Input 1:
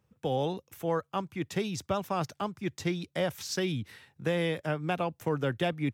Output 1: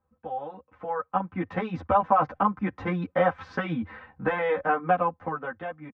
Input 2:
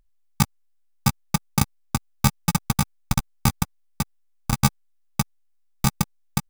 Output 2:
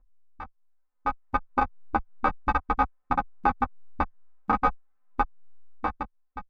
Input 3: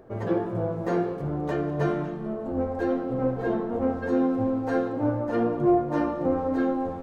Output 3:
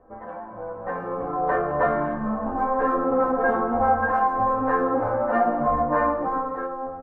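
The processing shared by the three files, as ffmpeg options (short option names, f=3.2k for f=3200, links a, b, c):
-filter_complex "[0:a]lowpass=f=1.2k:w=0.5412,lowpass=f=1.2k:w=1.3066,afftfilt=real='re*lt(hypot(re,im),0.447)':imag='im*lt(hypot(re,im),0.447)':win_size=1024:overlap=0.75,equalizer=f=280:t=o:w=2.6:g=-7,aecho=1:1:3.9:0.73,acrossover=split=720[a][b];[a]acompressor=threshold=-41dB:ratio=6[c];[b]alimiter=level_in=7dB:limit=-24dB:level=0:latency=1:release=262,volume=-7dB[d];[c][d]amix=inputs=2:normalize=0,dynaudnorm=f=250:g=9:m=15dB,crystalizer=i=7.5:c=0,asplit=2[e][f];[f]adelay=9.5,afreqshift=-0.55[g];[e][g]amix=inputs=2:normalize=1,volume=2.5dB"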